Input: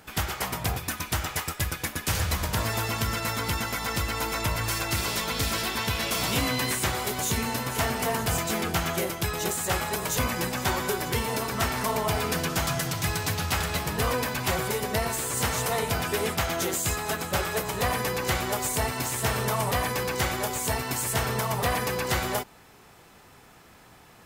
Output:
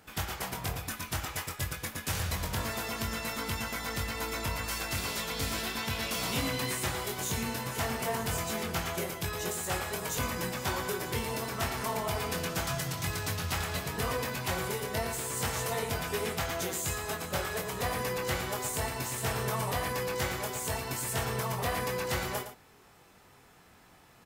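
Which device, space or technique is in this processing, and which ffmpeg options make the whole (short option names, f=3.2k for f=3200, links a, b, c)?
slapback doubling: -filter_complex "[0:a]asplit=3[a][b][c];[b]adelay=22,volume=-6dB[d];[c]adelay=112,volume=-10dB[e];[a][d][e]amix=inputs=3:normalize=0,volume=-7dB"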